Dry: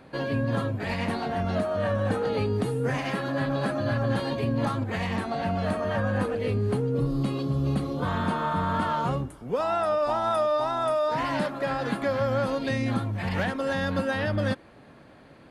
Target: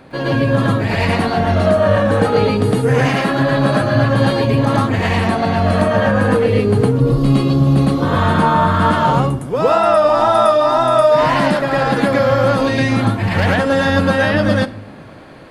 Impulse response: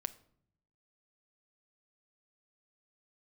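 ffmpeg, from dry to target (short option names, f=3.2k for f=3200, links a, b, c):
-filter_complex "[0:a]asplit=2[a][b];[1:a]atrim=start_sample=2205,adelay=110[c];[b][c]afir=irnorm=-1:irlink=0,volume=4.5dB[d];[a][d]amix=inputs=2:normalize=0,volume=8dB"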